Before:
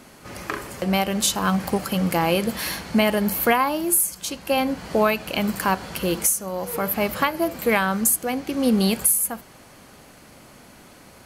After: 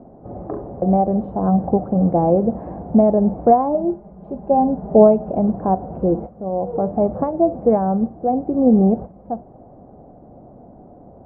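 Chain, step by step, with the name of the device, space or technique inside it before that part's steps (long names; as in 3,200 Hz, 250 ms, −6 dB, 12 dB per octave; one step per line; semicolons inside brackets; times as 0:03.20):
0:03.74–0:05.32: comb filter 4.9 ms, depth 69%
under water (low-pass filter 680 Hz 24 dB per octave; parametric band 730 Hz +9 dB 0.28 octaves)
level +6 dB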